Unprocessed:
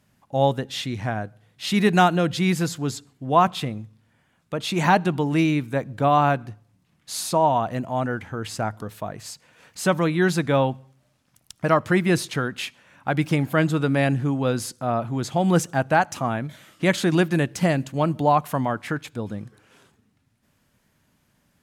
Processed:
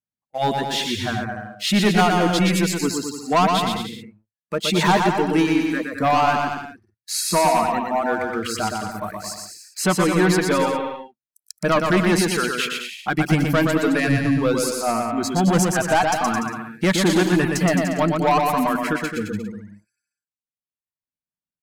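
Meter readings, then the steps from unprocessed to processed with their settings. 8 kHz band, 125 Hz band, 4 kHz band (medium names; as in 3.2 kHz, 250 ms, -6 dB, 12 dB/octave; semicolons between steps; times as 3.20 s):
+7.5 dB, 0.0 dB, +6.5 dB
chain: spectral noise reduction 29 dB; in parallel at -5 dB: wavefolder -19 dBFS; on the sum: hum notches 60/120 Hz; waveshaping leveller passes 2; reverb removal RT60 1.3 s; on a send: bouncing-ball echo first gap 120 ms, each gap 0.8×, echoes 5; on the sum: trim -5.5 dB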